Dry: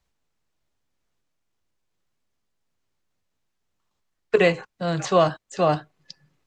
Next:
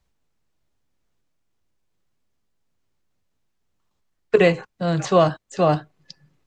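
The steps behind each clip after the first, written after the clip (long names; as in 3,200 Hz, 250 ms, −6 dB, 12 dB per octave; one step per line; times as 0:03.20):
low-shelf EQ 480 Hz +5 dB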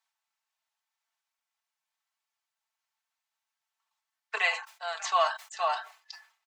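elliptic high-pass filter 790 Hz, stop band 80 dB
comb filter 4.5 ms, depth 64%
level that may fall only so fast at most 140 dB per second
level −4 dB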